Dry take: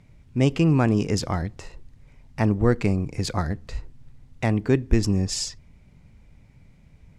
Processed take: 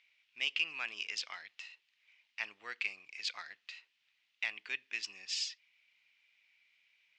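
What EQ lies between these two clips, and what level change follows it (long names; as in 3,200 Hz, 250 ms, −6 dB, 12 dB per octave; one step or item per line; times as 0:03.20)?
high-pass with resonance 2,700 Hz, resonance Q 2.7
low-pass filter 6,200 Hz 12 dB per octave
high-frequency loss of the air 89 metres
−3.5 dB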